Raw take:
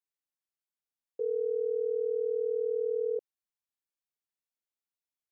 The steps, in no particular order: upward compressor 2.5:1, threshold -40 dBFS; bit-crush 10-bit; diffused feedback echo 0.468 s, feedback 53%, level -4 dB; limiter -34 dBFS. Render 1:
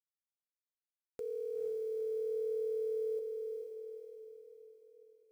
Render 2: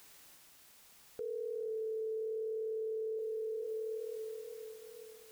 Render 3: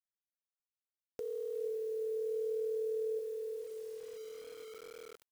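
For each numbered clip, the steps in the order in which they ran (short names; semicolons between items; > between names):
bit-crush > upward compressor > limiter > diffused feedback echo; upward compressor > diffused feedback echo > bit-crush > limiter; limiter > diffused feedback echo > bit-crush > upward compressor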